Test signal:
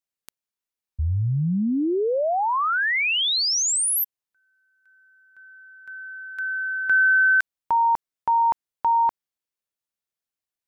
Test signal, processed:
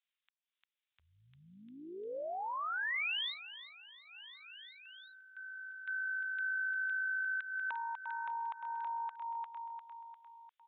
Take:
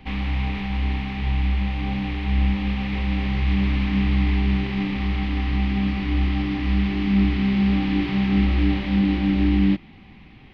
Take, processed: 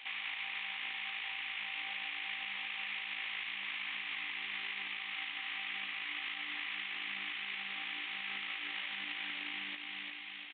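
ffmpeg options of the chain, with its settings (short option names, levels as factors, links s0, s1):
-filter_complex "[0:a]highpass=1300,asplit=2[s0][s1];[s1]aecho=0:1:350|700|1050|1400|1750:0.251|0.123|0.0603|0.0296|0.0145[s2];[s0][s2]amix=inputs=2:normalize=0,acompressor=threshold=0.02:ratio=6:attack=0.12:release=426:knee=6:detection=peak,alimiter=level_in=3.76:limit=0.0631:level=0:latency=1:release=260,volume=0.266,acrossover=split=2900[s3][s4];[s4]acompressor=threshold=0.002:ratio=4:attack=1:release=60[s5];[s3][s5]amix=inputs=2:normalize=0,tremolo=f=54:d=0.4,crystalizer=i=6:c=0,aresample=8000,aresample=44100"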